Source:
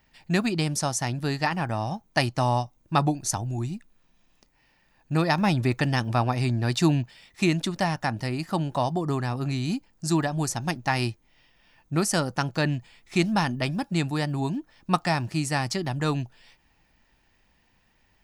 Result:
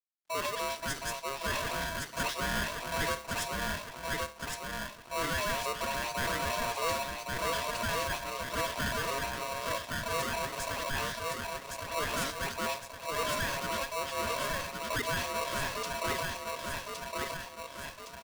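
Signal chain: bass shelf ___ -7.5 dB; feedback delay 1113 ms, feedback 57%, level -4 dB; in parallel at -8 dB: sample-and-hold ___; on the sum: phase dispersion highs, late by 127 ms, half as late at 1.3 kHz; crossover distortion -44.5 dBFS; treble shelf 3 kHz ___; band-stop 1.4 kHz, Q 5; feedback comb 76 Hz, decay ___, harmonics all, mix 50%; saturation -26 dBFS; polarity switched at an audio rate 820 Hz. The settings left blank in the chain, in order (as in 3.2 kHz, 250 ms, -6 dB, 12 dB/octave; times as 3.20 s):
440 Hz, 12×, -5.5 dB, 0.44 s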